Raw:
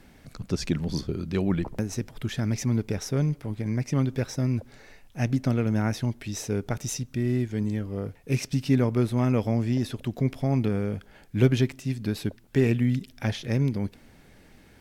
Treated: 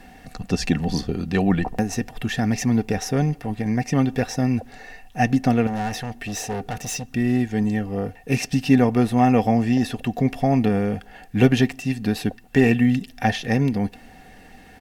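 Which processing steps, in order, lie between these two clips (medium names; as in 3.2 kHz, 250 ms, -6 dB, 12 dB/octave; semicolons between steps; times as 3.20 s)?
5.67–7.04 s: hard clipper -30.5 dBFS, distortion -16 dB; comb 4.2 ms, depth 37%; small resonant body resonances 760/1800/2700 Hz, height 16 dB, ringing for 60 ms; trim +5 dB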